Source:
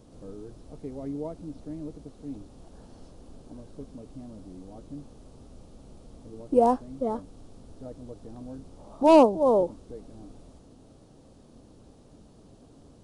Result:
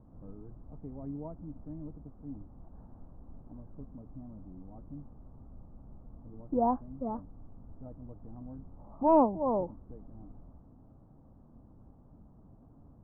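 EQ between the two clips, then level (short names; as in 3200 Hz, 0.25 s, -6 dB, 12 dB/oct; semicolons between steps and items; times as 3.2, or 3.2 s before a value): LPF 1100 Hz 24 dB/oct; bell 450 Hz -12 dB 1.3 oct; 0.0 dB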